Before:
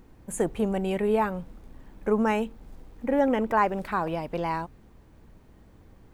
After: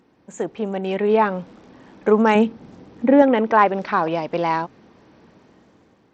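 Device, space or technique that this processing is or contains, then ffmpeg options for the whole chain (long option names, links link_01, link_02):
Bluetooth headset: -filter_complex "[0:a]asettb=1/sr,asplit=3[link_01][link_02][link_03];[link_01]atrim=end=2.354[link_04];[link_02]atrim=start=2.35:end=3.22,asetpts=PTS-STARTPTS,afade=type=in:duration=0.004:curve=qsin,afade=type=out:start_time=0.866:duration=0.004:curve=qsin,equalizer=frequency=130:width=0.51:gain=9.5[link_05];[link_03]atrim=start=3.216[link_06];[link_04][link_05]acrossfade=duration=0.004:curve1=hsin:curve2=qsin[link_07];[link_07][link_06]acrossfade=duration=0.004:curve1=qsin:curve2=hsin,highpass=200,dynaudnorm=framelen=300:gausssize=7:maxgain=12dB,aresample=16000,aresample=44100" -ar 32000 -c:a sbc -b:a 64k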